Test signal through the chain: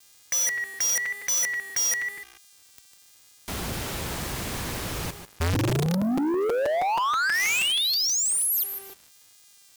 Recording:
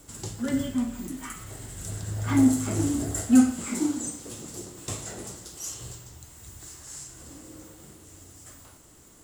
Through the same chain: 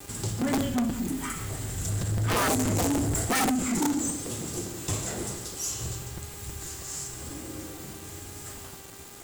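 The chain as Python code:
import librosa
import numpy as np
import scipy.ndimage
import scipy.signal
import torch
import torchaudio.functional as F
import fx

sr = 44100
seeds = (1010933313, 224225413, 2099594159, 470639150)

y = fx.dynamic_eq(x, sr, hz=2200.0, q=1.0, threshold_db=-37.0, ratio=4.0, max_db=3)
y = fx.echo_feedback(y, sr, ms=148, feedback_pct=23, wet_db=-14.0)
y = fx.dmg_buzz(y, sr, base_hz=400.0, harmonics=30, level_db=-56.0, tilt_db=-5, odd_only=False)
y = fx.quant_dither(y, sr, seeds[0], bits=8, dither='none')
y = fx.low_shelf(y, sr, hz=150.0, db=5.5)
y = (np.mod(10.0 ** (17.0 / 20.0) * y + 1.0, 2.0) - 1.0) / 10.0 ** (17.0 / 20.0)
y = scipy.signal.sosfilt(scipy.signal.butter(2, 52.0, 'highpass', fs=sr, output='sos'), y)
y = fx.vibrato(y, sr, rate_hz=0.99, depth_cents=38.0)
y = 10.0 ** (-27.5 / 20.0) * np.tanh(y / 10.0 ** (-27.5 / 20.0))
y = fx.buffer_crackle(y, sr, first_s=0.41, period_s=0.16, block=256, kind='repeat')
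y = y * 10.0 ** (5.0 / 20.0)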